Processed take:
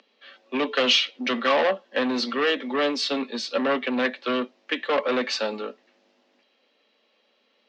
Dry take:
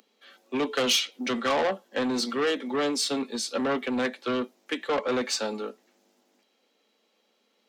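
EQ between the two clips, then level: cabinet simulation 180–4700 Hz, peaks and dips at 250 Hz +3 dB, 580 Hz +6 dB, 1.1 kHz +4 dB, 1.8 kHz +5 dB, 2.7 kHz +5 dB; treble shelf 3.5 kHz +6.5 dB; 0.0 dB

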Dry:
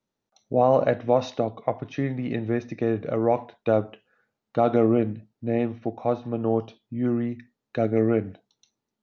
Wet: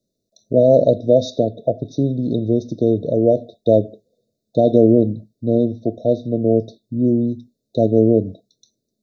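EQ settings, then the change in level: brick-wall FIR band-stop 700–3500 Hz; +8.0 dB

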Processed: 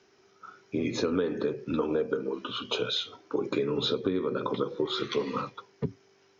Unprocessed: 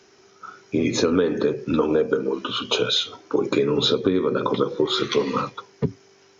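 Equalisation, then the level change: low-pass 5.5 kHz 12 dB/octave; -8.0 dB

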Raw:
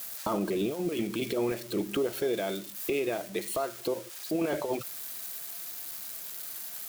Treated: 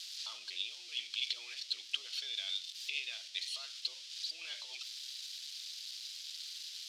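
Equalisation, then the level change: Butterworth band-pass 4 kHz, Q 1.7; +7.5 dB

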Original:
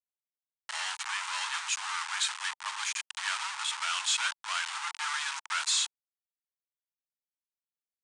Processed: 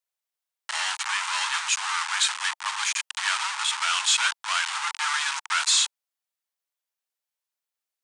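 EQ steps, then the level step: high-pass 490 Hz 24 dB/octave; +7.0 dB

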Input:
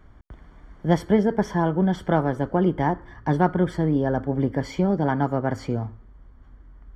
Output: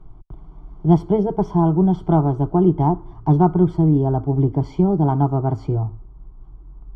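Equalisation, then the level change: low-pass 2.4 kHz 6 dB/octave; tilt EQ -2 dB/octave; static phaser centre 350 Hz, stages 8; +3.5 dB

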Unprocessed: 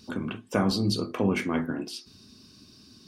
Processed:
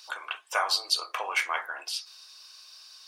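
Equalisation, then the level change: inverse Chebyshev high-pass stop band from 230 Hz, stop band 60 dB; +6.0 dB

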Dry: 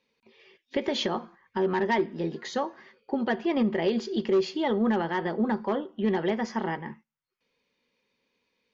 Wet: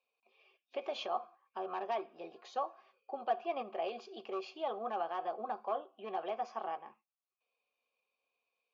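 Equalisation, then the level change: dynamic bell 1.4 kHz, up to +3 dB, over -40 dBFS, Q 1.4; vowel filter a; tone controls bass -10 dB, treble +9 dB; +2.0 dB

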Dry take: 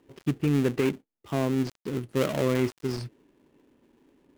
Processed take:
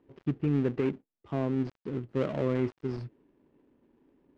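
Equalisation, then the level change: tape spacing loss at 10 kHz 29 dB; -2.5 dB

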